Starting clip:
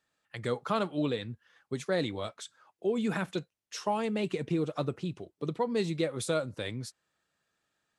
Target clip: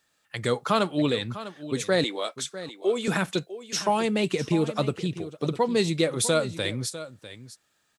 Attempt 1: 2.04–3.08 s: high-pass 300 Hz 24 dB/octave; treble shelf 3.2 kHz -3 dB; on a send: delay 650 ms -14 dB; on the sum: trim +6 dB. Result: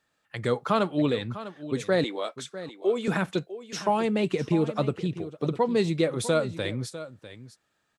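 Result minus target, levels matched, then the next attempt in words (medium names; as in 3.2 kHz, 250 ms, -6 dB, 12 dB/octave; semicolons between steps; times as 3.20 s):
8 kHz band -8.0 dB
2.04–3.08 s: high-pass 300 Hz 24 dB/octave; treble shelf 3.2 kHz +7.5 dB; on a send: delay 650 ms -14 dB; on the sum: trim +6 dB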